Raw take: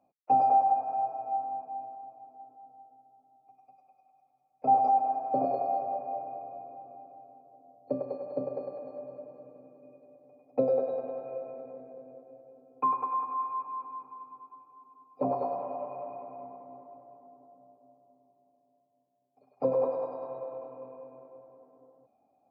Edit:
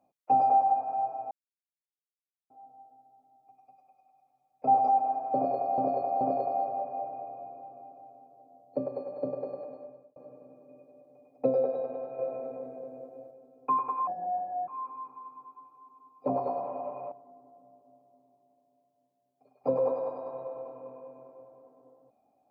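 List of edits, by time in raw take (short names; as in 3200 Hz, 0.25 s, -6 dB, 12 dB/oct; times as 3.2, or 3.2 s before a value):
1.31–2.5 mute
5.35–5.78 loop, 3 plays
8.78–9.3 fade out
11.33–12.45 gain +5 dB
13.21–13.63 speed 69%
16.07–17.08 cut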